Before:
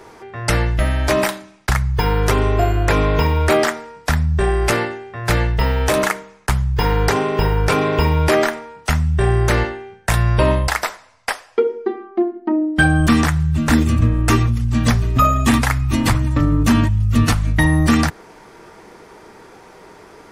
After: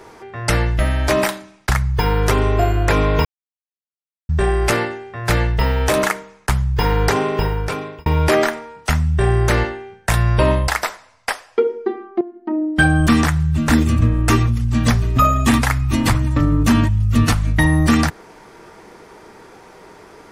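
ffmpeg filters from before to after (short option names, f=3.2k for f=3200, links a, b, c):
-filter_complex "[0:a]asplit=5[a][b][c][d][e];[a]atrim=end=3.25,asetpts=PTS-STARTPTS,afade=t=out:st=3.246:d=0.004:c=hsin[f];[b]atrim=start=3.25:end=4.29,asetpts=PTS-STARTPTS,volume=0[g];[c]atrim=start=4.29:end=8.06,asetpts=PTS-STARTPTS,afade=t=in:d=0.004:c=hsin,afade=t=out:st=2.97:d=0.8[h];[d]atrim=start=8.06:end=12.21,asetpts=PTS-STARTPTS,afade=t=in:d=0.004:c=hsin,afade=t=out:st=4.146:d=0.004:c=hsin:silence=0.177828[i];[e]atrim=start=12.21,asetpts=PTS-STARTPTS,afade=t=in:d=0.52:silence=0.177828[j];[f][g][h][i][j]concat=n=5:v=0:a=1"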